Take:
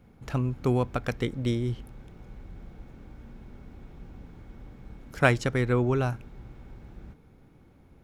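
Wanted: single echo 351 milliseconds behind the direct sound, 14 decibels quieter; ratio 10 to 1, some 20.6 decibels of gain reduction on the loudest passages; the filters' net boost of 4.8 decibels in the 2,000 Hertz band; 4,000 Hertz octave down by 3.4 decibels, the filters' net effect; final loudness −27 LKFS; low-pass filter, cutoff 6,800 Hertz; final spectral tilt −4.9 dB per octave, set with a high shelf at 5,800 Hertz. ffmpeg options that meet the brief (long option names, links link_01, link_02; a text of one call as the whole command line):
ffmpeg -i in.wav -af "lowpass=6800,equalizer=frequency=2000:width_type=o:gain=8.5,equalizer=frequency=4000:width_type=o:gain=-7,highshelf=frequency=5800:gain=-4.5,acompressor=threshold=-34dB:ratio=10,aecho=1:1:351:0.2,volume=15dB" out.wav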